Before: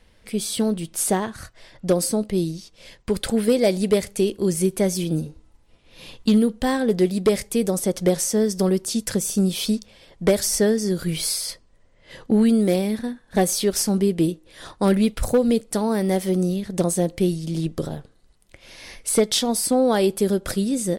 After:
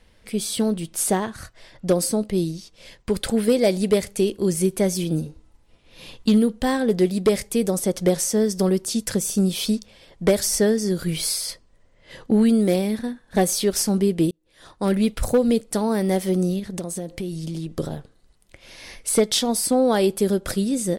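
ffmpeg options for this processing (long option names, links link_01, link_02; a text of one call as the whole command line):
ffmpeg -i in.wav -filter_complex "[0:a]asettb=1/sr,asplit=3[link_01][link_02][link_03];[link_01]atrim=end=16.594[link_04];[link_02]atrim=start=16.59:end=17.73,asetpts=PTS-STARTPTS,afade=type=in:duration=0.004:curve=qsin,afade=type=out:start_time=1.136:duration=0.004:curve=qsin,acompressor=threshold=-26dB:ratio=5:attack=3.2:release=140:knee=1:detection=peak[link_05];[link_03]atrim=start=17.726[link_06];[link_04][link_05]acrossfade=duration=0.004:curve1=hsin:curve2=qsin[link_07];[link_07][link_06]acrossfade=duration=0.004:curve1=qsin:curve2=hsin,asplit=2[link_08][link_09];[link_08]atrim=end=14.31,asetpts=PTS-STARTPTS,afade=type=out:start_time=14.306:duration=0.004:curve=hsin[link_10];[link_09]atrim=start=14.31,asetpts=PTS-STARTPTS,afade=type=in:duration=0.81[link_11];[link_10][link_11]concat=n=2:v=0:a=1" out.wav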